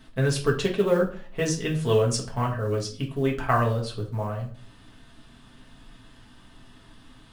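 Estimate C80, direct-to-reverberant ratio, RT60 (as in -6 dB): 15.0 dB, -2.0 dB, 0.45 s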